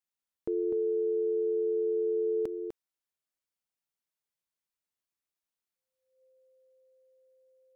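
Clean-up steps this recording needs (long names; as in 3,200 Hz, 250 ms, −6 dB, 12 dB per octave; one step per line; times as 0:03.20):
notch filter 520 Hz, Q 30
echo removal 250 ms −6.5 dB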